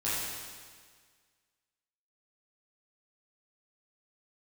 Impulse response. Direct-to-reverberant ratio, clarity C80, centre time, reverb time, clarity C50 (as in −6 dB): −10.5 dB, 0.0 dB, 122 ms, 1.7 s, −2.5 dB